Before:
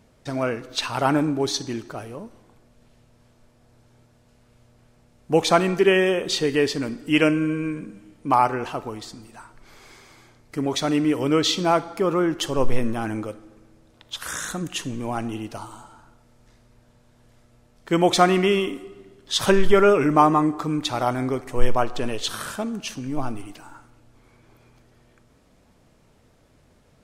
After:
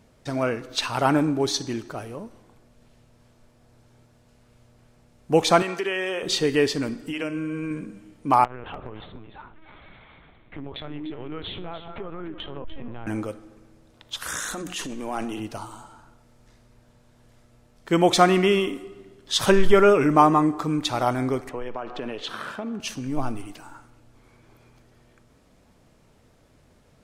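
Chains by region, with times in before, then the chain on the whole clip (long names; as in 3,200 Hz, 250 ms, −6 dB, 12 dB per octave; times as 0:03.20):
0:05.62–0:06.23: meter weighting curve A + downward compressor 4 to 1, threshold −23 dBFS
0:06.94–0:07.71: downward compressor, threshold −25 dBFS + mains-hum notches 50/100/150/200/250/300/350/400/450 Hz
0:08.44–0:13.07: linear-prediction vocoder at 8 kHz pitch kept + downward compressor 5 to 1, threshold −32 dBFS + single-tap delay 296 ms −12 dB
0:14.40–0:15.40: parametric band 130 Hz −14 dB 0.9 octaves + mains-hum notches 60/120/180 Hz + transient designer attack −6 dB, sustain +6 dB
0:21.49–0:22.80: three-way crossover with the lows and the highs turned down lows −14 dB, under 160 Hz, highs −19 dB, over 3,700 Hz + downward compressor 12 to 1, threshold −26 dBFS
whole clip: no processing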